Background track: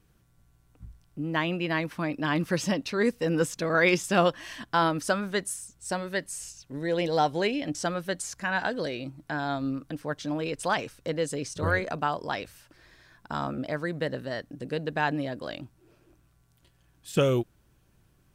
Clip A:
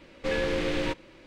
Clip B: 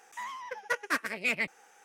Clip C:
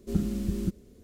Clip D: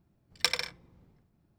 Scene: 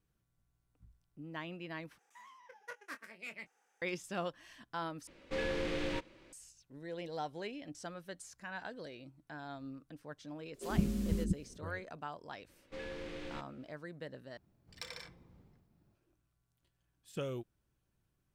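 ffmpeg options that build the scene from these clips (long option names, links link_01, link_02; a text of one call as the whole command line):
ffmpeg -i bed.wav -i cue0.wav -i cue1.wav -i cue2.wav -i cue3.wav -filter_complex "[1:a]asplit=2[link_01][link_02];[0:a]volume=-16dB[link_03];[2:a]asplit=2[link_04][link_05];[link_05]adelay=23,volume=-9.5dB[link_06];[link_04][link_06]amix=inputs=2:normalize=0[link_07];[3:a]acrossover=split=340[link_08][link_09];[link_08]adelay=90[link_10];[link_10][link_09]amix=inputs=2:normalize=0[link_11];[4:a]acompressor=threshold=-50dB:ratio=2:attack=0.39:release=21:knee=1:detection=peak[link_12];[link_03]asplit=4[link_13][link_14][link_15][link_16];[link_13]atrim=end=1.984[link_17];[link_07]atrim=end=1.84,asetpts=PTS-STARTPTS,volume=-17.5dB[link_18];[link_14]atrim=start=3.816:end=5.074[link_19];[link_01]atrim=end=1.26,asetpts=PTS-STARTPTS,volume=-8dB[link_20];[link_15]atrim=start=6.326:end=14.374[link_21];[link_12]atrim=end=1.58,asetpts=PTS-STARTPTS,volume=-1.5dB[link_22];[link_16]atrim=start=15.946[link_23];[link_11]atrim=end=1.03,asetpts=PTS-STARTPTS,volume=-3dB,afade=type=in:duration=0.004:curve=hsin,afade=type=out:start_time=1.026:duration=0.004:curve=hsin,adelay=10540[link_24];[link_02]atrim=end=1.26,asetpts=PTS-STARTPTS,volume=-16.5dB,afade=type=in:duration=0.004:curve=hsin,afade=type=out:start_time=1.256:duration=0.004:curve=hsin,adelay=12480[link_25];[link_17][link_18]acrossfade=duration=0.004:curve1=hsin:curve2=hsin[link_26];[link_26][link_19]acrossfade=duration=0.004:curve1=hsin:curve2=hsin[link_27];[link_27][link_20]acrossfade=duration=0.004:curve1=hsin:curve2=hsin[link_28];[link_28][link_21]acrossfade=duration=0.004:curve1=hsin:curve2=hsin[link_29];[link_29][link_22]acrossfade=duration=0.004:curve1=hsin:curve2=hsin[link_30];[link_30][link_23]acrossfade=duration=0.004:curve1=hsin:curve2=hsin[link_31];[link_31][link_24][link_25]amix=inputs=3:normalize=0" out.wav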